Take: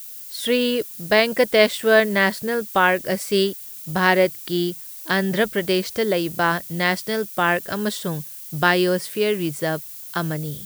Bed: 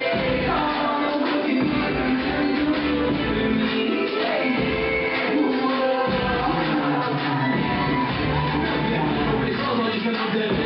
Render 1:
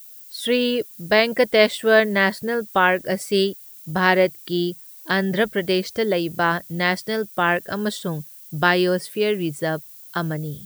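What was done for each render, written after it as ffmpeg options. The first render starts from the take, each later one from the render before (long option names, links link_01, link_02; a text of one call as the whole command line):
ffmpeg -i in.wav -af "afftdn=noise_reduction=8:noise_floor=-37" out.wav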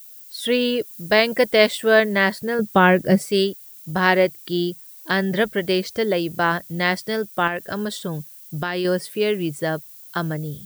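ffmpeg -i in.wav -filter_complex "[0:a]asettb=1/sr,asplit=3[link_01][link_02][link_03];[link_01]atrim=end=0.874[link_04];[link_02]atrim=start=0.87:end=1.85,asetpts=PTS-STARTPTS,afade=type=in:duration=0.004:curve=qsin,afade=type=out:start_time=0.976:duration=0.004:curve=qsin,highshelf=frequency=5400:gain=3[link_05];[link_03]atrim=start=1.846[link_06];[link_04][link_05]acrossfade=duration=0.004:curve1=hsin:curve2=qsin[link_07];[link_07][link_06]acrossfade=duration=0.004:curve1=qsin:curve2=hsin,asettb=1/sr,asplit=3[link_08][link_09][link_10];[link_08]atrim=end=2.594[link_11];[link_09]atrim=start=2.59:end=3.29,asetpts=PTS-STARTPTS,afade=type=in:duration=0.004:curve=qsin,afade=type=out:start_time=0.696:duration=0.004:curve=qsin,equalizer=frequency=160:width=0.53:gain=12[link_12];[link_10]atrim=start=3.286[link_13];[link_11][link_12]acrossfade=duration=0.004:curve1=hsin:curve2=qsin[link_14];[link_14][link_13]acrossfade=duration=0.004:curve1=qsin:curve2=hsin,asettb=1/sr,asplit=3[link_15][link_16][link_17];[link_15]atrim=end=7.474[link_18];[link_16]atrim=start=7.47:end=8.85,asetpts=PTS-STARTPTS,afade=type=in:duration=0.004:curve=qsin,afade=type=out:start_time=1.376:duration=0.004:curve=qsin,acompressor=threshold=-21dB:ratio=5:attack=3.2:release=140:knee=1:detection=peak[link_19];[link_17]atrim=start=8.846[link_20];[link_18][link_19]acrossfade=duration=0.004:curve1=hsin:curve2=qsin[link_21];[link_21][link_20]acrossfade=duration=0.004:curve1=qsin:curve2=hsin" out.wav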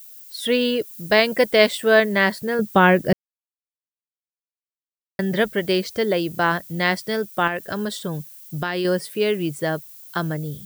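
ffmpeg -i in.wav -filter_complex "[0:a]asplit=3[link_01][link_02][link_03];[link_01]atrim=end=3.13,asetpts=PTS-STARTPTS,afade=type=out:start_time=3.126:duration=0.004:curve=hsin[link_04];[link_02]atrim=start=3.13:end=5.19,asetpts=PTS-STARTPTS,volume=0[link_05];[link_03]atrim=start=5.19,asetpts=PTS-STARTPTS,afade=type=in:duration=0.004:curve=hsin[link_06];[link_04][link_05][link_06]concat=n=3:v=0:a=1" out.wav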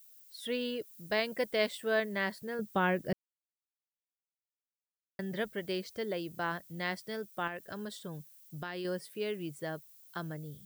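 ffmpeg -i in.wav -af "volume=-15dB" out.wav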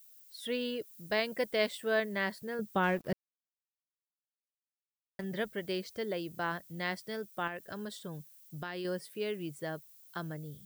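ffmpeg -i in.wav -filter_complex "[0:a]asettb=1/sr,asplit=3[link_01][link_02][link_03];[link_01]atrim=end=2.834[link_04];[link_02]atrim=start=2.83:end=5.24,asetpts=PTS-STARTPTS,afade=type=in:duration=0.004:curve=qsin,afade=type=out:start_time=2.406:duration=0.004:curve=qsin,aeval=exprs='sgn(val(0))*max(abs(val(0))-0.00316,0)':channel_layout=same[link_05];[link_03]atrim=start=5.236[link_06];[link_04][link_05]acrossfade=duration=0.004:curve1=hsin:curve2=qsin[link_07];[link_07][link_06]acrossfade=duration=0.004:curve1=qsin:curve2=hsin" out.wav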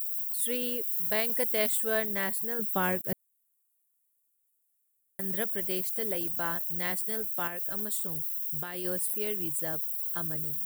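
ffmpeg -i in.wav -af "aexciter=amount=10:drive=6.3:freq=7500,aeval=exprs='0.2*(cos(1*acos(clip(val(0)/0.2,-1,1)))-cos(1*PI/2))+0.00126*(cos(4*acos(clip(val(0)/0.2,-1,1)))-cos(4*PI/2))':channel_layout=same" out.wav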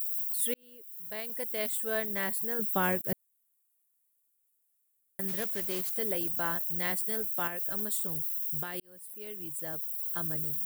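ffmpeg -i in.wav -filter_complex "[0:a]asplit=3[link_01][link_02][link_03];[link_01]afade=type=out:start_time=5.27:duration=0.02[link_04];[link_02]asoftclip=type=hard:threshold=-29.5dB,afade=type=in:start_time=5.27:duration=0.02,afade=type=out:start_time=5.96:duration=0.02[link_05];[link_03]afade=type=in:start_time=5.96:duration=0.02[link_06];[link_04][link_05][link_06]amix=inputs=3:normalize=0,asplit=3[link_07][link_08][link_09];[link_07]atrim=end=0.54,asetpts=PTS-STARTPTS,afade=type=out:start_time=0.536:duration=0.004:curve=hsin[link_10];[link_08]atrim=start=0.54:end=8.8,asetpts=PTS-STARTPTS,afade=type=in:duration=2.02,afade=type=out:start_time=8.256:duration=0.004:curve=hsin[link_11];[link_09]atrim=start=8.8,asetpts=PTS-STARTPTS,afade=type=in:duration=1.51[link_12];[link_10][link_11][link_12]concat=n=3:v=0:a=1" out.wav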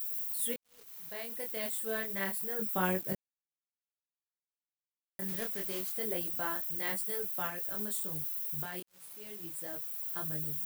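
ffmpeg -i in.wav -af "flanger=delay=20:depth=7.1:speed=0.29,acrusher=bits=7:mix=0:aa=0.5" out.wav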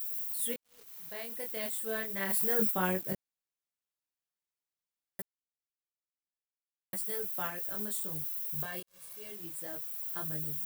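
ffmpeg -i in.wav -filter_complex "[0:a]asplit=3[link_01][link_02][link_03];[link_01]afade=type=out:start_time=2.29:duration=0.02[link_04];[link_02]acontrast=88,afade=type=in:start_time=2.29:duration=0.02,afade=type=out:start_time=2.7:duration=0.02[link_05];[link_03]afade=type=in:start_time=2.7:duration=0.02[link_06];[link_04][link_05][link_06]amix=inputs=3:normalize=0,asettb=1/sr,asplit=3[link_07][link_08][link_09];[link_07]atrim=end=8.554[link_10];[link_08]atrim=start=8.55:end=9.32,asetpts=PTS-STARTPTS,afade=type=in:duration=0.004:curve=qsin,afade=type=out:start_time=0.766:duration=0.004:curve=qsin,aecho=1:1:1.8:0.65,atrim=end_sample=33957[link_11];[link_09]atrim=start=9.316[link_12];[link_10][link_11]acrossfade=duration=0.004:curve1=hsin:curve2=qsin[link_13];[link_13][link_12]acrossfade=duration=0.004:curve1=qsin:curve2=hsin,asplit=3[link_14][link_15][link_16];[link_14]atrim=end=5.22,asetpts=PTS-STARTPTS,afade=type=out:start_time=5.216:duration=0.004:curve=hsin[link_17];[link_15]atrim=start=5.22:end=6.93,asetpts=PTS-STARTPTS,volume=0[link_18];[link_16]atrim=start=6.93,asetpts=PTS-STARTPTS,afade=type=in:duration=0.004:curve=hsin[link_19];[link_17][link_18][link_19]concat=n=3:v=0:a=1" out.wav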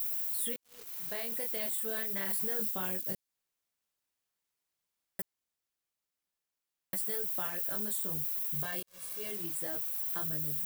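ffmpeg -i in.wav -filter_complex "[0:a]acrossover=split=3300|7800[link_01][link_02][link_03];[link_01]acompressor=threshold=-44dB:ratio=4[link_04];[link_02]acompressor=threshold=-52dB:ratio=4[link_05];[link_03]acompressor=threshold=-35dB:ratio=4[link_06];[link_04][link_05][link_06]amix=inputs=3:normalize=0,asplit=2[link_07][link_08];[link_08]alimiter=level_in=10.5dB:limit=-24dB:level=0:latency=1:release=30,volume=-10.5dB,volume=1dB[link_09];[link_07][link_09]amix=inputs=2:normalize=0" out.wav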